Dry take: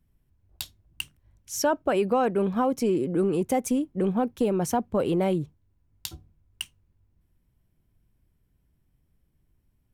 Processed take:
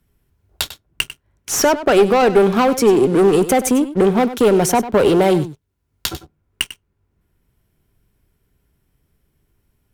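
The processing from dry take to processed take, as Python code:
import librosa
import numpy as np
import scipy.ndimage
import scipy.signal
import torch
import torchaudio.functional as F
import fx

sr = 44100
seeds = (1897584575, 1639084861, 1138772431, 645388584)

p1 = fx.low_shelf(x, sr, hz=460.0, db=-7.0)
p2 = fx.leveller(p1, sr, passes=3)
p3 = fx.small_body(p2, sr, hz=(410.0, 1400.0), ring_ms=45, db=7)
p4 = fx.cheby_harmonics(p3, sr, harmonics=(2,), levels_db=(-8,), full_scale_db=-3.0)
p5 = p4 + fx.echo_single(p4, sr, ms=97, db=-14.5, dry=0)
p6 = fx.band_squash(p5, sr, depth_pct=40)
y = F.gain(torch.from_numpy(p6), 4.5).numpy()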